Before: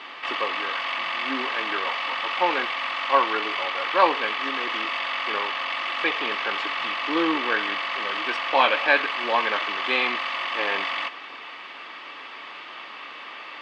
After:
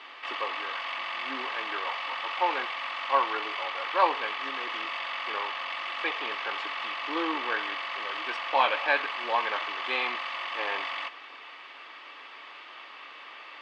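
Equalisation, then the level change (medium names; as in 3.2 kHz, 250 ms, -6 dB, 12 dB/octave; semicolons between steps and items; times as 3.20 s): dynamic bell 870 Hz, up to +4 dB, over -33 dBFS, Q 2; peaking EQ 170 Hz -12 dB 0.96 oct; -6.5 dB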